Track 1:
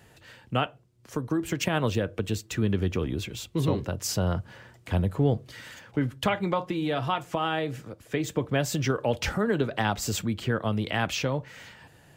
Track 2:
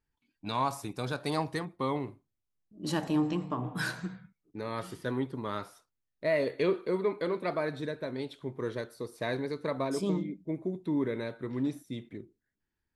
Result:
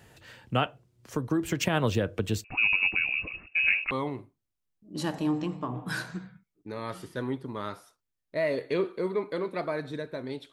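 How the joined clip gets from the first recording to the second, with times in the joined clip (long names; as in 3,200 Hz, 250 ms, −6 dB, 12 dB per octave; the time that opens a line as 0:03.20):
track 1
0:02.44–0:03.91: voice inversion scrambler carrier 2,700 Hz
0:03.91: continue with track 2 from 0:01.80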